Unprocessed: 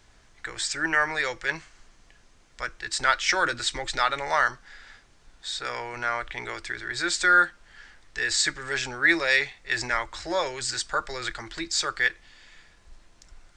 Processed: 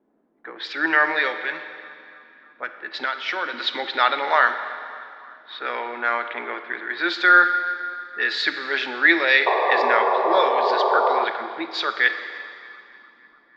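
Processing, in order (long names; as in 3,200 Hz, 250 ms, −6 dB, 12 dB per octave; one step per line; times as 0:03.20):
low-pass that shuts in the quiet parts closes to 350 Hz, open at −23.5 dBFS
elliptic band-pass filter 240–3,800 Hz, stop band 40 dB
0:01.27–0:03.54: downward compressor 3 to 1, threshold −31 dBFS, peak gain reduction 11.5 dB
0:09.46–0:11.25: sound drawn into the spectrogram noise 370–1,200 Hz −26 dBFS
feedback echo with a band-pass in the loop 297 ms, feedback 68%, band-pass 1,300 Hz, level −21.5 dB
four-comb reverb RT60 2.4 s, DRR 9 dB
level +5.5 dB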